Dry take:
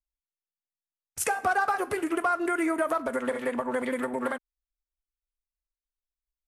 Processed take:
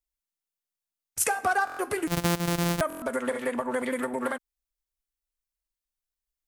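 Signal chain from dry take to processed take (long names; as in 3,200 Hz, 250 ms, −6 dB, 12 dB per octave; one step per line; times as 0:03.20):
0:02.07–0:02.81: samples sorted by size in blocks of 256 samples
high-shelf EQ 5,000 Hz +6 dB
buffer that repeats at 0:01.65/0:02.88, samples 1,024, times 5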